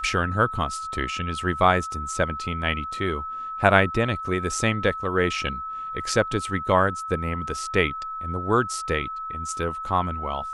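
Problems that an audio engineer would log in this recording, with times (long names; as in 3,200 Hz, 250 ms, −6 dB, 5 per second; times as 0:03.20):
whistle 1,300 Hz −30 dBFS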